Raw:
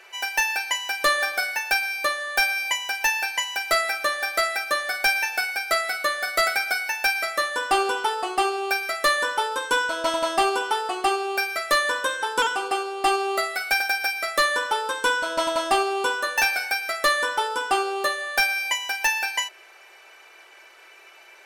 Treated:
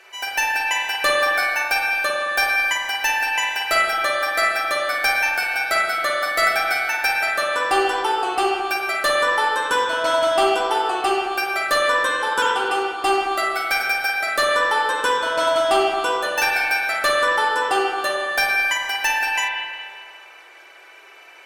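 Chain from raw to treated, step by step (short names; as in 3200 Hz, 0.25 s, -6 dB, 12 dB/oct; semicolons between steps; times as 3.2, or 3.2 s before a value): added harmonics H 6 -35 dB, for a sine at -13.5 dBFS; spring tank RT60 1.9 s, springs 44/54 ms, chirp 60 ms, DRR -2 dB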